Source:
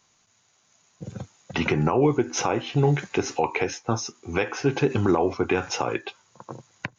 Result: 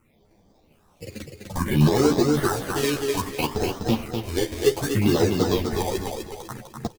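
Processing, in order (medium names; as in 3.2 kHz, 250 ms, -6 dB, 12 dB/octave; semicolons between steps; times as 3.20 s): bass shelf 460 Hz +5 dB; in parallel at +2.5 dB: compression, threshold -31 dBFS, peak gain reduction 17 dB; on the sum: decimation with a swept rate 26×, swing 60% 0.74 Hz; phase shifter stages 4, 0.61 Hz, lowest notch 140–2700 Hz; on a send: feedback delay 250 ms, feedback 38%, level -4.5 dB; on the sum: three-phase chorus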